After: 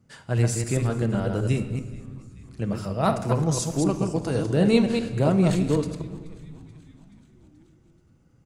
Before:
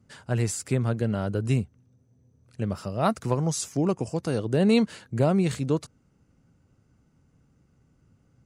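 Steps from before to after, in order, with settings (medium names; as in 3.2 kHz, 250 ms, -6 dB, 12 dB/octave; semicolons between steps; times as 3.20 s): chunks repeated in reverse 128 ms, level -4 dB; on a send: frequency-shifting echo 430 ms, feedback 64%, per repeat -98 Hz, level -22 dB; on the sum: simulated room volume 1300 m³, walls mixed, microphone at 0.62 m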